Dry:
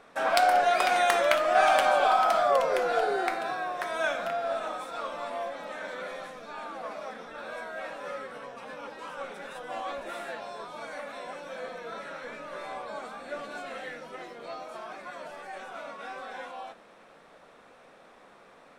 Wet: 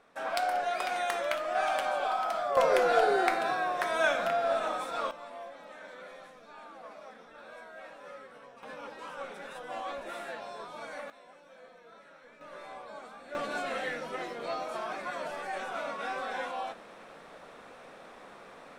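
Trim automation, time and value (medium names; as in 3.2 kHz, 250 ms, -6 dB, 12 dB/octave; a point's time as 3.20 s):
-8 dB
from 2.57 s +2 dB
from 5.11 s -9.5 dB
from 8.63 s -2.5 dB
from 11.10 s -15 dB
from 12.41 s -7 dB
from 13.35 s +4.5 dB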